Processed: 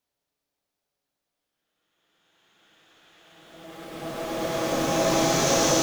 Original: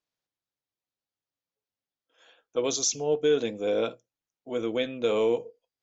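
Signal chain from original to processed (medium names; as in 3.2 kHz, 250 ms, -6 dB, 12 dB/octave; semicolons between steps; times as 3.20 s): cycle switcher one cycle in 3, inverted; Paulstretch 4.7×, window 1.00 s, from 1.39 s; on a send: reverse echo 104 ms -6 dB; on the sum: trim +7.5 dB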